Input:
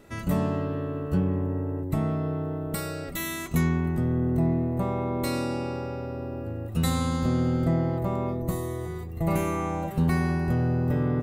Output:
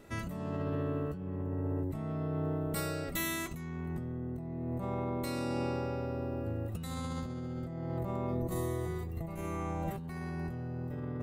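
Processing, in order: 9.27–9.93 s: bass shelf 78 Hz +11 dB; compressor with a negative ratio -30 dBFS, ratio -1; trim -6 dB

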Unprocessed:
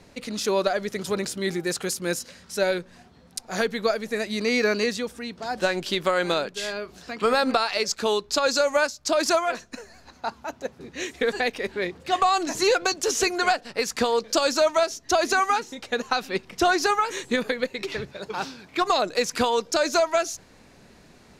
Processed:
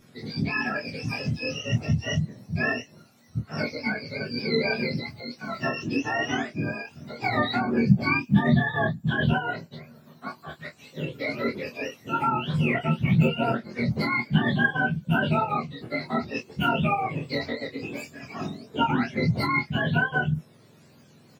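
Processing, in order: spectrum inverted on a logarithmic axis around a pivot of 1 kHz; chorus voices 4, 1.4 Hz, delay 16 ms, depth 3 ms; doubling 25 ms -5.5 dB

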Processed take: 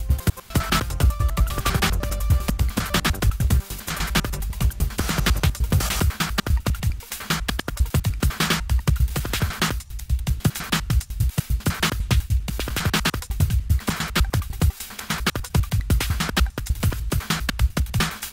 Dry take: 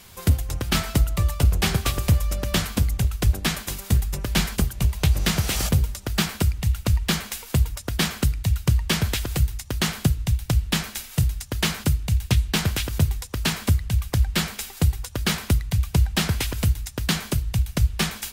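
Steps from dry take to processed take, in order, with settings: slices played last to first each 100 ms, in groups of 5; dynamic bell 1.3 kHz, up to +7 dB, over -45 dBFS, Q 1.6

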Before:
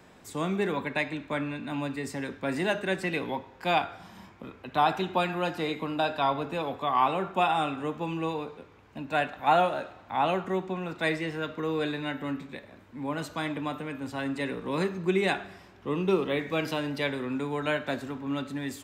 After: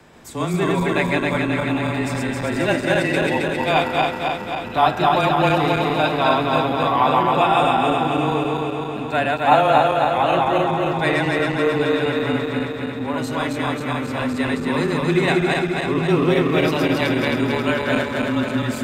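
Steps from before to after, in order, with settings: backward echo that repeats 134 ms, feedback 81%, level -1 dB; frequency shift -20 Hz; trim +5.5 dB

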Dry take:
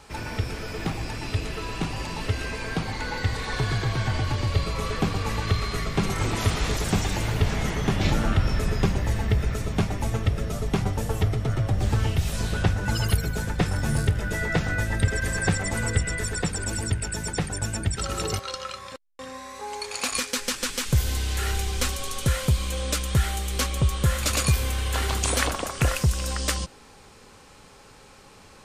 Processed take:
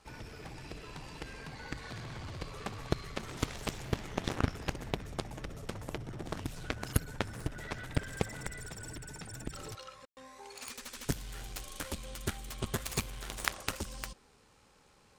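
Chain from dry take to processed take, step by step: Chebyshev shaper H 3 -8 dB, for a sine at -8 dBFS; granular stretch 0.53×, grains 26 ms; trim +1.5 dB

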